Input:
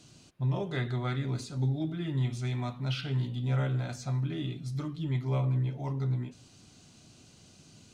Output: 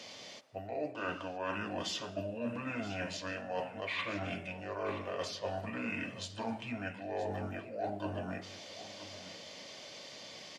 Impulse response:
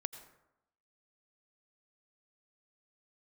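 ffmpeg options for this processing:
-filter_complex "[0:a]highpass=510,equalizer=f=830:w=3.4:g=13,areverse,acompressor=threshold=-44dB:ratio=12,areverse,asetrate=33075,aresample=44100,aecho=1:1:974:0.188,asplit=2[a][b];[1:a]atrim=start_sample=2205,asetrate=29106,aresample=44100[c];[b][c]afir=irnorm=-1:irlink=0,volume=-10.5dB[d];[a][d]amix=inputs=2:normalize=0,volume=7.5dB"

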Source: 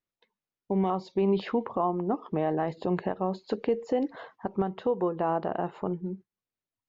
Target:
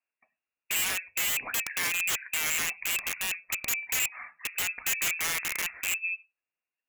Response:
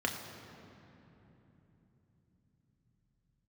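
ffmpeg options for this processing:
-filter_complex "[0:a]lowpass=f=2.4k:t=q:w=0.5098,lowpass=f=2.4k:t=q:w=0.6013,lowpass=f=2.4k:t=q:w=0.9,lowpass=f=2.4k:t=q:w=2.563,afreqshift=-2800,asplit=2[a][b];[1:a]atrim=start_sample=2205,afade=t=out:st=0.16:d=0.01,atrim=end_sample=7497,lowshelf=f=410:g=8[c];[b][c]afir=irnorm=-1:irlink=0,volume=-17dB[d];[a][d]amix=inputs=2:normalize=0,aeval=exprs='(mod(13.3*val(0)+1,2)-1)/13.3':c=same"

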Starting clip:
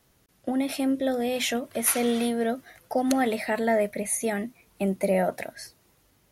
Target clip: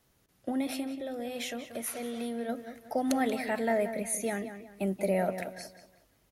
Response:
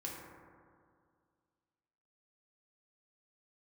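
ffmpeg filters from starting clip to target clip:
-filter_complex "[0:a]asplit=3[a][b][c];[a]afade=t=out:st=0.78:d=0.02[d];[b]acompressor=threshold=-29dB:ratio=6,afade=t=in:st=0.78:d=0.02,afade=t=out:st=2.48:d=0.02[e];[c]afade=t=in:st=2.48:d=0.02[f];[d][e][f]amix=inputs=3:normalize=0,asplit=2[g][h];[h]adelay=183,lowpass=f=3.6k:p=1,volume=-10dB,asplit=2[i][j];[j]adelay=183,lowpass=f=3.6k:p=1,volume=0.35,asplit=2[k][l];[l]adelay=183,lowpass=f=3.6k:p=1,volume=0.35,asplit=2[m][n];[n]adelay=183,lowpass=f=3.6k:p=1,volume=0.35[o];[i][k][m][o]amix=inputs=4:normalize=0[p];[g][p]amix=inputs=2:normalize=0,volume=-5dB"

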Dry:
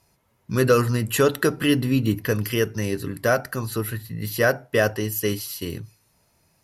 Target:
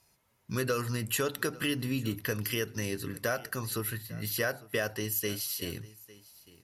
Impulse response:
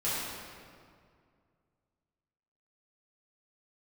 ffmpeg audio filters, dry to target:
-af "tiltshelf=f=1.3k:g=-3.5,acompressor=threshold=-24dB:ratio=3,aecho=1:1:852:0.0891,volume=-4.5dB"

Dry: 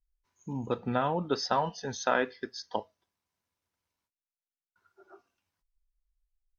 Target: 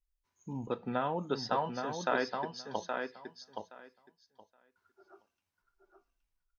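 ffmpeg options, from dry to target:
-filter_complex "[0:a]asettb=1/sr,asplit=3[a][b][c];[a]atrim=end=0.674[d];[b]atrim=start=0.67:end=2.57,asetpts=PTS-STARTPTS,afade=t=in:d=0.004:c=qsin,afade=t=out:st=1.896:d=0.004:c=qsin,highpass=140,lowpass=5.2k[e];[c]atrim=start=2.566[f];[d][e]acrossfade=d=0.004:c1=hsin:c2=qsin[g];[g][f]acrossfade=d=0.004:c1=qsin:c2=hsin,asplit=2[h][i];[i]aecho=0:1:821|1642|2463:0.531|0.0796|0.0119[j];[h][j]amix=inputs=2:normalize=0,volume=-4dB"

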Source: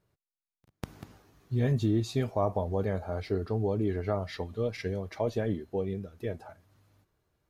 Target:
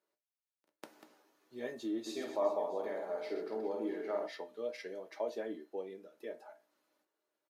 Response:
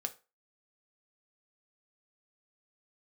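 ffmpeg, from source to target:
-filter_complex "[0:a]highpass=f=310:w=0.5412,highpass=f=310:w=1.3066,asplit=3[a][b][c];[a]afade=t=out:st=2.05:d=0.02[d];[b]aecho=1:1:50|125|237.5|406.2|659.4:0.631|0.398|0.251|0.158|0.1,afade=t=in:st=2.05:d=0.02,afade=t=out:st=4.26:d=0.02[e];[c]afade=t=in:st=4.26:d=0.02[f];[d][e][f]amix=inputs=3:normalize=0[g];[1:a]atrim=start_sample=2205,asetrate=52920,aresample=44100[h];[g][h]afir=irnorm=-1:irlink=0,volume=-5dB"

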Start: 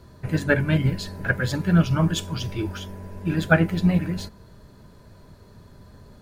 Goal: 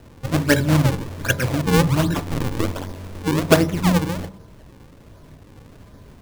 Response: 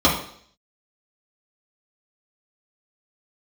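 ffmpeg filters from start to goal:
-filter_complex "[0:a]acrusher=samples=39:mix=1:aa=0.000001:lfo=1:lforange=62.4:lforate=1.3,asettb=1/sr,asplit=3[a][b][c];[a]atrim=end=2.254[d];[b]atrim=start=2.25:end=2.97,asetpts=PTS-STARTPTS,afade=t=in:d=0.004:c=qsin,afade=t=out:st=0.716:d=0.004:c=qsin,aeval=exprs='0.119*(cos(1*acos(clip(val(0)/0.119,-1,1)))-cos(1*PI/2))+0.0596*(cos(2*acos(clip(val(0)/0.119,-1,1)))-cos(2*PI/2))+0.0168*(cos(6*acos(clip(val(0)/0.119,-1,1)))-cos(6*PI/2))':c=same[e];[c]atrim=start=2.966[f];[d][e]acrossfade=d=0.004:c1=hsin:c2=qsin[g];[g][f]acrossfade=d=0.004:c1=qsin:c2=hsin,asplit=2[h][i];[1:a]atrim=start_sample=2205,lowpass=1.2k[j];[i][j]afir=irnorm=-1:irlink=0,volume=-31dB[k];[h][k]amix=inputs=2:normalize=0,volume=2.5dB"

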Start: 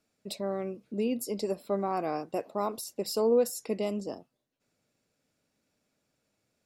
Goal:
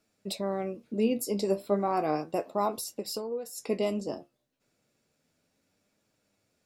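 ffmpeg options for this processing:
-filter_complex "[0:a]asettb=1/sr,asplit=3[a][b][c];[a]atrim=end=2.854[d];[b]atrim=start=2.85:end=3.58,asetpts=PTS-STARTPTS,afade=t=in:d=0.004:c=qsin,afade=t=out:st=0.726:d=0.004:c=qsin,acompressor=threshold=-34dB:ratio=16[e];[c]atrim=start=3.576[f];[d][e]acrossfade=d=0.004:c1=hsin:c2=qsin[g];[g][f]acrossfade=d=0.004:c1=qsin:c2=hsin,flanger=delay=9.2:depth=6.3:regen=57:speed=0.33:shape=triangular,volume=7dB"

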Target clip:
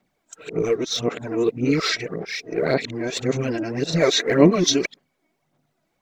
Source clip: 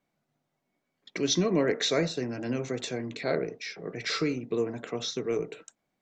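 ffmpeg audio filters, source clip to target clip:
-af "areverse,aphaser=in_gain=1:out_gain=1:delay=3.2:decay=0.53:speed=1.8:type=sinusoidal,volume=6.5dB"

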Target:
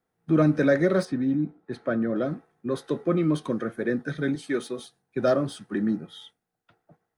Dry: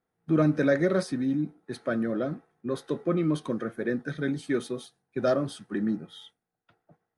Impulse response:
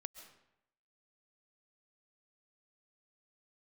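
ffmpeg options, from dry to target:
-filter_complex "[0:a]asettb=1/sr,asplit=3[a][b][c];[a]atrim=end=1.054[d];[b]atrim=start=1.05:end=2.16,asetpts=PTS-STARTPTS,afade=t=in:d=0.004:c=qsin,afade=t=out:st=1.106:d=0.004:c=qsin,aemphasis=mode=reproduction:type=75kf[e];[c]atrim=start=2.156[f];[d][e]acrossfade=d=0.004:c1=hsin:c2=qsin[g];[g][f]acrossfade=d=0.004:c1=qsin:c2=hsin,asettb=1/sr,asplit=3[h][i][j];[h]atrim=end=4.354[k];[i]atrim=start=4.35:end=4.79,asetpts=PTS-STARTPTS,afade=t=in:d=0.004:c=qsin,afade=t=out:st=0.436:d=0.004:c=qsin,highpass=f=290:p=1[l];[j]atrim=start=4.786[m];[k][l]acrossfade=d=0.004:c1=hsin:c2=qsin[n];[n][m]acrossfade=d=0.004:c1=qsin:c2=hsin,acrossover=split=430|2200[o][p][q];[q]asoftclip=type=tanh:threshold=-35dB[r];[o][p][r]amix=inputs=3:normalize=0,volume=2.5dB"

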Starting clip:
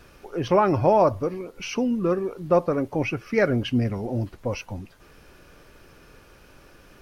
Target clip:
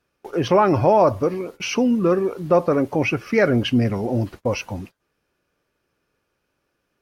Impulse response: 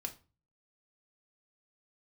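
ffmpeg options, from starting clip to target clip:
-filter_complex "[0:a]highpass=f=110:p=1,agate=range=-27dB:threshold=-43dB:ratio=16:detection=peak,asplit=2[a][b];[b]alimiter=limit=-18.5dB:level=0:latency=1:release=15,volume=1dB[c];[a][c]amix=inputs=2:normalize=0"

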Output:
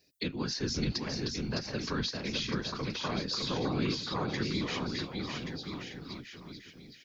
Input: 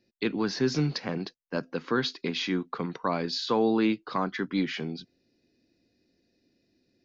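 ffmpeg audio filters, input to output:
-filter_complex "[0:a]crystalizer=i=5:c=0,afftfilt=real='hypot(re,im)*cos(2*PI*random(0))':imag='hypot(re,im)*sin(2*PI*random(1))':win_size=512:overlap=0.75,acrossover=split=210[a][b];[b]acompressor=threshold=-41dB:ratio=2.5[c];[a][c]amix=inputs=2:normalize=0,asplit=2[d][e];[e]aecho=0:1:610|1128|1569|1944|2262:0.631|0.398|0.251|0.158|0.1[f];[d][f]amix=inputs=2:normalize=0,volume=3dB"

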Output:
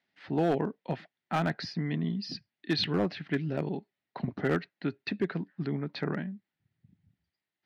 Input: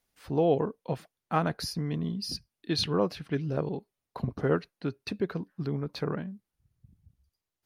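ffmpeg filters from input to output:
-af "highpass=f=120:w=0.5412,highpass=f=120:w=1.3066,equalizer=f=130:t=q:w=4:g=-5,equalizer=f=480:t=q:w=4:g=-8,equalizer=f=1.1k:t=q:w=4:g=-7,equalizer=f=1.9k:t=q:w=4:g=8,lowpass=f=4.2k:w=0.5412,lowpass=f=4.2k:w=1.3066,volume=22dB,asoftclip=hard,volume=-22dB,volume=2dB"

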